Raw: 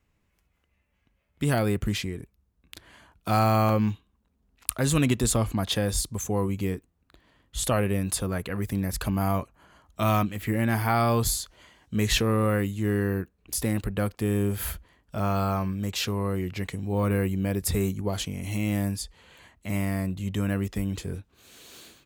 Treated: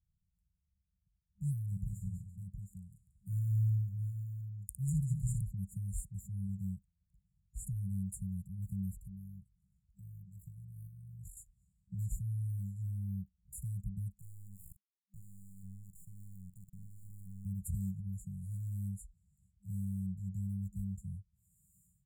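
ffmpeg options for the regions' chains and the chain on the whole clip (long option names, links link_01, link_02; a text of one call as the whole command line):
ffmpeg -i in.wav -filter_complex "[0:a]asettb=1/sr,asplit=3[link_01][link_02][link_03];[link_01]atrim=end=1.664[link_04];[link_02]atrim=start=1.66:end=5.42,asetpts=PTS-STARTPTS,afade=type=in:duration=0.004:curve=qsin,afade=type=out:start_time=3.756:duration=0.004:curve=qsin,aecho=1:1:57|192|200|337|714:0.398|0.335|0.355|0.15|0.447,atrim=end_sample=165816,adynamicequalizer=threshold=0.00794:dfrequency=5400:dqfactor=0.7:tfrequency=5400:tqfactor=0.7:attack=5:release=100:ratio=0.375:range=3:mode=cutabove:tftype=highshelf[link_05];[link_03]atrim=start=5.416[link_06];[link_04][link_05]acrossfade=duration=0.004:curve1=hsin:curve2=qsin[link_07];[link_07][link_06]acrossfade=duration=0.004:curve1=qsin:curve2=hsin,asettb=1/sr,asplit=3[link_08][link_09][link_10];[link_08]atrim=end=8.934[link_11];[link_09]atrim=start=8.93:end=11.37,asetpts=PTS-STARTPTS,afade=type=in:duration=0.004:curve=qsin,afade=type=out:start_time=2.436:duration=0.004:curve=qsin,tremolo=f=49:d=0.519,acompressor=threshold=-35dB:ratio=4:attack=3.2:release=140:knee=1:detection=peak[link_12];[link_10]atrim=start=11.366[link_13];[link_11][link_12]acrossfade=duration=0.004:curve1=hsin:curve2=qsin[link_14];[link_14][link_13]acrossfade=duration=0.004:curve1=qsin:curve2=hsin,asettb=1/sr,asplit=3[link_15][link_16][link_17];[link_15]atrim=end=14.194[link_18];[link_16]atrim=start=14.19:end=17.46,asetpts=PTS-STARTPTS,afade=type=in:duration=0.004:curve=qsin,afade=type=out:start_time=3.266:duration=0.004:curve=qsin,acompressor=threshold=-35dB:ratio=3:attack=3.2:release=140:knee=1:detection=peak,acrusher=bits=3:dc=4:mix=0:aa=0.000001,asplit=2[link_19][link_20];[link_20]adelay=44,volume=-13.5dB[link_21];[link_19][link_21]amix=inputs=2:normalize=0,atrim=end_sample=144207[link_22];[link_17]atrim=start=17.456[link_23];[link_18][link_22]acrossfade=duration=0.004:curve1=hsin:curve2=qsin[link_24];[link_24][link_23]acrossfade=duration=0.004:curve1=qsin:curve2=hsin,equalizer=frequency=3300:width_type=o:width=2.8:gain=-4.5,afftfilt=real='re*(1-between(b*sr/4096,200,6900))':imag='im*(1-between(b*sr/4096,200,6900))':win_size=4096:overlap=0.75,highshelf=frequency=7500:gain=-11.5,volume=-8dB" out.wav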